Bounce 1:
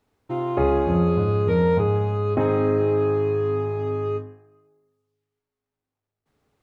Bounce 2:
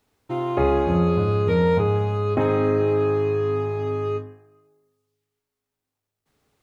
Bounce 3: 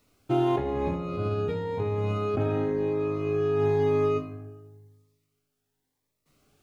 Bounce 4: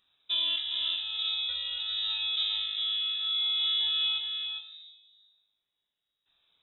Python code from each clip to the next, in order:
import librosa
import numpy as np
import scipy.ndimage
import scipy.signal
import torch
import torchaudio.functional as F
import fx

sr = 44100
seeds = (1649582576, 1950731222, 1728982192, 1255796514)

y1 = fx.high_shelf(x, sr, hz=2400.0, db=7.5)
y2 = fx.over_compress(y1, sr, threshold_db=-25.0, ratio=-1.0)
y2 = fx.room_shoebox(y2, sr, seeds[0], volume_m3=240.0, walls='mixed', distance_m=0.38)
y2 = fx.notch_cascade(y2, sr, direction='rising', hz=0.96)
y3 = y2 + 10.0 ** (-6.0 / 20.0) * np.pad(y2, (int(404 * sr / 1000.0), 0))[:len(y2)]
y3 = fx.freq_invert(y3, sr, carrier_hz=3800)
y3 = F.gain(torch.from_numpy(y3), -5.5).numpy()